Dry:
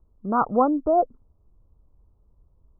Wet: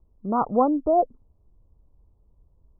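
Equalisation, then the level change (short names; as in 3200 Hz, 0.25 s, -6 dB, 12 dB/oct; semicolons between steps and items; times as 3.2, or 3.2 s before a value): LPF 1100 Hz 24 dB/oct; 0.0 dB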